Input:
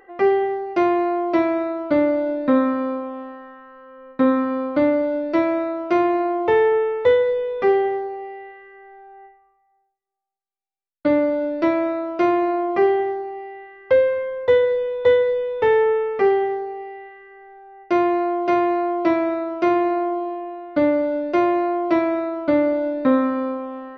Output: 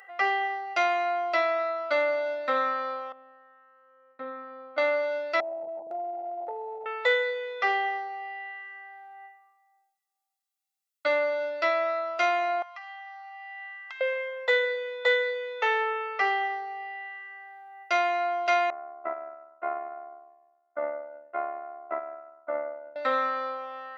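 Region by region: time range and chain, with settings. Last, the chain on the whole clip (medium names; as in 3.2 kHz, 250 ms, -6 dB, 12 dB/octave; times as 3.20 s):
3.12–4.78 s: low-pass 1.3 kHz + peaking EQ 950 Hz -12.5 dB 2.8 oct
5.40–6.86 s: send-on-delta sampling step -22.5 dBFS + steep low-pass 900 Hz 96 dB/octave + compression 2.5:1, threshold -24 dBFS
12.62–14.01 s: elliptic band-stop 210–830 Hz + compression 16:1, threshold -39 dBFS
18.70–22.96 s: AM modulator 73 Hz, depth 50% + low-pass 1.4 kHz 24 dB/octave + upward expansion 2.5:1, over -37 dBFS
whole clip: high-pass 980 Hz 12 dB/octave; treble shelf 3.1 kHz +8 dB; comb 1.5 ms, depth 53%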